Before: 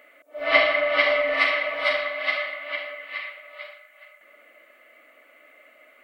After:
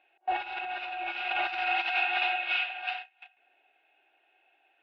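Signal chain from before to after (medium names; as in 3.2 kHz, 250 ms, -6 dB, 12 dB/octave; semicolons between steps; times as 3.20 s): low-pass 2.7 kHz 24 dB/octave; peaking EQ 280 Hz +2.5 dB 1.5 oct; gate -46 dBFS, range -21 dB; compressor with a negative ratio -32 dBFS, ratio -1; tape speed +25%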